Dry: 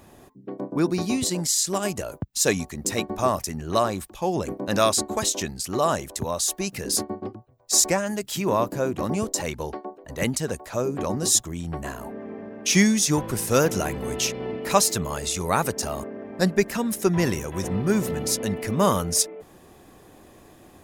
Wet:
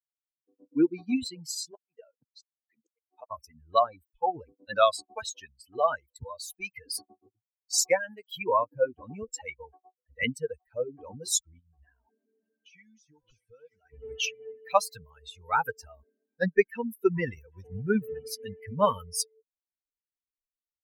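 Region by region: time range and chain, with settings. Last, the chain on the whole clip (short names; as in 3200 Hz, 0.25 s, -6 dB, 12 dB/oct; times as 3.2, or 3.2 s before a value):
1.71–3.31 HPF 230 Hz + flipped gate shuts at -13 dBFS, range -41 dB + air absorption 73 m
11.59–13.93 compressor, threshold -32 dBFS + LPF 8900 Hz + delay with a stepping band-pass 0.309 s, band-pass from 5500 Hz, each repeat -0.7 oct, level -1.5 dB
whole clip: per-bin expansion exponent 3; tone controls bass -12 dB, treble -11 dB; AGC gain up to 14.5 dB; gain -6.5 dB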